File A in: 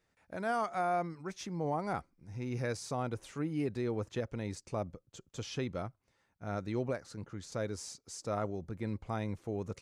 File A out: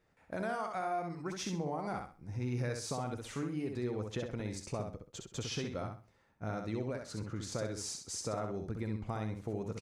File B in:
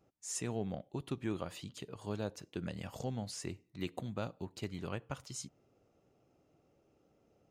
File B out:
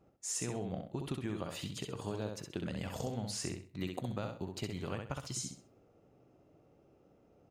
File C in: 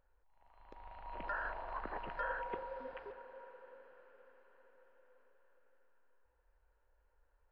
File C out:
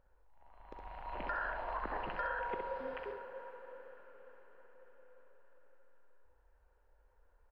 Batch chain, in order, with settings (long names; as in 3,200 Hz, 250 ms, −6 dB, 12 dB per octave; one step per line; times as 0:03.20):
downward compressor, threshold −40 dBFS
repeating echo 65 ms, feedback 28%, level −5 dB
one half of a high-frequency compander decoder only
level +5 dB